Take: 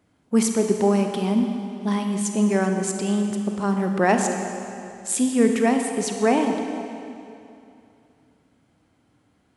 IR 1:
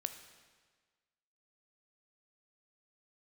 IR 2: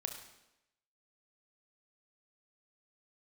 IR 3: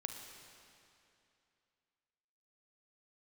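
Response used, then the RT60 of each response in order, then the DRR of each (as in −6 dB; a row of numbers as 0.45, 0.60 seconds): 3; 1.5, 0.90, 2.7 seconds; 8.0, 3.5, 4.0 decibels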